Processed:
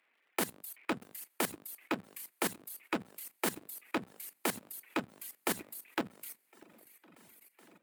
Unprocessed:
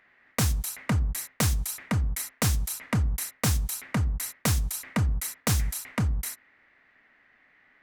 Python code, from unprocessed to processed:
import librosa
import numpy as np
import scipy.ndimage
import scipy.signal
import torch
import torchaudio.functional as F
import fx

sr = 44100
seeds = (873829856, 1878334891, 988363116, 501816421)

y = fx.cycle_switch(x, sr, every=2, mode='inverted')
y = fx.peak_eq(y, sr, hz=5400.0, db=-8.5, octaves=0.78)
y = fx.formant_shift(y, sr, semitones=2)
y = fx.echo_swing(y, sr, ms=1059, ratio=1.5, feedback_pct=65, wet_db=-18.0)
y = fx.dereverb_blind(y, sr, rt60_s=1.9)
y = scipy.signal.sosfilt(scipy.signal.butter(4, 230.0, 'highpass', fs=sr, output='sos'), y)
y = fx.level_steps(y, sr, step_db=15)